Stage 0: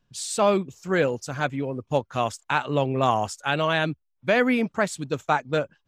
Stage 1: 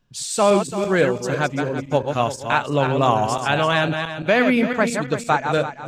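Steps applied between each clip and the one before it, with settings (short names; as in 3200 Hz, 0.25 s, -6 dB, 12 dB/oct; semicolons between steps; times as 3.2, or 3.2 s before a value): regenerating reverse delay 0.169 s, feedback 52%, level -6 dB; gain +3.5 dB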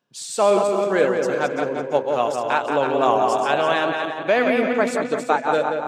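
HPF 410 Hz 12 dB/oct; tilt shelf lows +4.5 dB, about 740 Hz; darkening echo 0.179 s, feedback 53%, low-pass 2400 Hz, level -4.5 dB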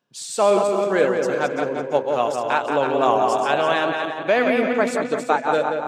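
nothing audible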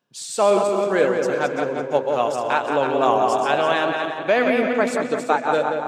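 warbling echo 0.122 s, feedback 67%, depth 102 cents, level -20 dB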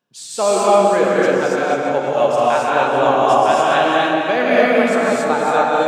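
non-linear reverb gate 0.31 s rising, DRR -5 dB; gain -1 dB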